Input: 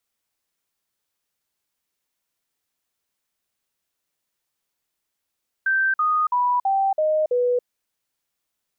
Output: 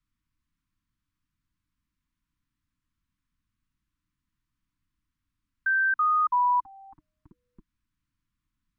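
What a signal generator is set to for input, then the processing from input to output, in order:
stepped sine 1.56 kHz down, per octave 3, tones 6, 0.28 s, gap 0.05 s -17 dBFS
Chebyshev band-stop 310–1000 Hz, order 4; tilt EQ -4.5 dB/octave

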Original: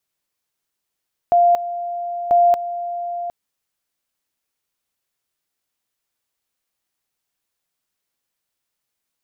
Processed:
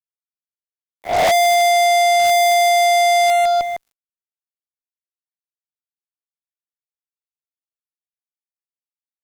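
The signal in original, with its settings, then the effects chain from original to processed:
two-level tone 697 Hz -10 dBFS, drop 13 dB, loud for 0.23 s, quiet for 0.76 s, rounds 2
reverse spectral sustain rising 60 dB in 0.41 s; on a send: feedback delay 155 ms, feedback 50%, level -14 dB; on the sum: fuzz box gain 43 dB, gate -51 dBFS

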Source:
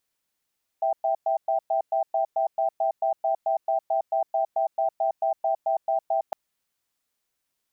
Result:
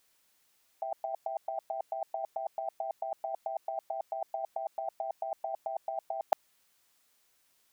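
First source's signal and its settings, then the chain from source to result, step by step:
cadence 657 Hz, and 783 Hz, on 0.11 s, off 0.11 s, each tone -23.5 dBFS 5.51 s
bass shelf 360 Hz -5.5 dB; compressor with a negative ratio -32 dBFS, ratio -0.5

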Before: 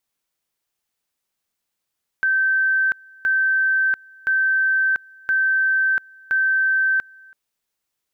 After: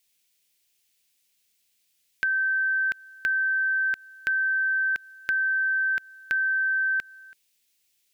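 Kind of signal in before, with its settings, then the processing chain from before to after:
two-level tone 1.55 kHz -15.5 dBFS, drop 27.5 dB, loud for 0.69 s, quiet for 0.33 s, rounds 5
FFT filter 400 Hz 0 dB, 1.2 kHz -8 dB, 2.4 kHz +10 dB; compression, threshold -23 dBFS

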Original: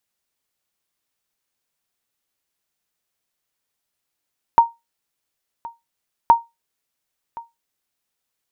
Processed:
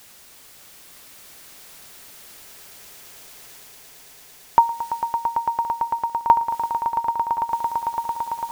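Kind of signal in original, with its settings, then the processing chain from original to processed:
sonar ping 929 Hz, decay 0.20 s, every 1.72 s, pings 2, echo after 1.07 s, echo -21.5 dB -3 dBFS
reverse; upward compressor, threshold -22 dBFS; reverse; echo with a slow build-up 112 ms, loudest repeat 8, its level -10 dB

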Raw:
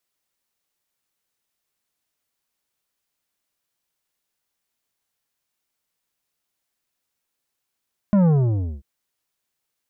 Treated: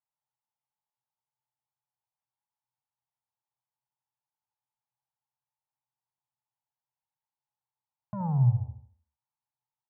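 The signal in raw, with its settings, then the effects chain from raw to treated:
sub drop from 210 Hz, over 0.69 s, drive 10 dB, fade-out 0.56 s, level -14 dB
two resonant band-passes 330 Hz, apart 2.8 oct; feedback delay 72 ms, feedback 42%, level -8 dB

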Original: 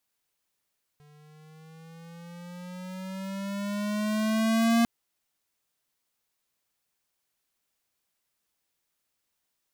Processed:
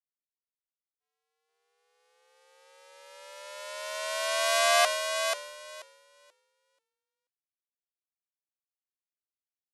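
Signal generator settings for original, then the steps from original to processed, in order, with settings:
gliding synth tone square, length 3.85 s, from 147 Hz, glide +8 st, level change +34.5 dB, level -21 dB
brick-wall FIR band-pass 440–12000 Hz; on a send: frequency-shifting echo 484 ms, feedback 41%, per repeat -40 Hz, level -3 dB; on the sum: three bands expanded up and down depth 100%

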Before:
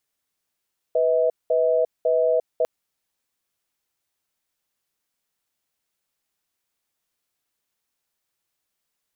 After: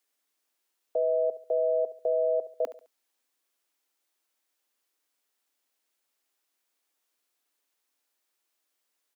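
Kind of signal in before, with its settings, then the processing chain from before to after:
cadence 494 Hz, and 641 Hz, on 0.35 s, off 0.20 s, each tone -19.5 dBFS 1.70 s
steep high-pass 240 Hz 72 dB/octave; peak limiter -19.5 dBFS; feedback delay 70 ms, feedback 35%, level -14.5 dB

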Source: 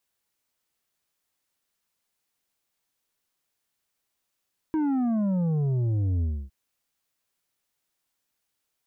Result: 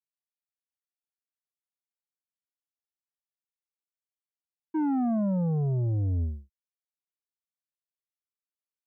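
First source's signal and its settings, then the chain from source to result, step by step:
sub drop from 320 Hz, over 1.76 s, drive 7 dB, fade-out 0.28 s, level -23 dB
expander -24 dBFS; dynamic bell 680 Hz, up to +5 dB, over -48 dBFS, Q 1.8

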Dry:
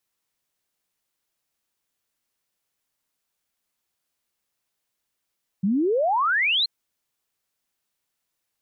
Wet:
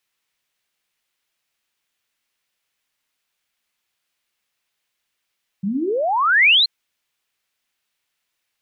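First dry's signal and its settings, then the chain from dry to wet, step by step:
log sweep 180 Hz -> 4.3 kHz 1.03 s -18.5 dBFS
peaking EQ 2.5 kHz +9 dB 2 oct; hum notches 60/120/180/240/300/360 Hz

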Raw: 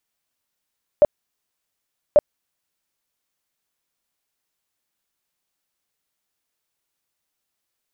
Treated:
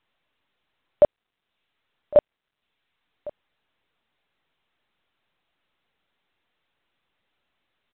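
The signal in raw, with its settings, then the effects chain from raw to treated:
tone bursts 593 Hz, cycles 17, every 1.14 s, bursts 2, -7.5 dBFS
reverb removal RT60 0.76 s; delay 1106 ms -20.5 dB; µ-law 64 kbps 8 kHz

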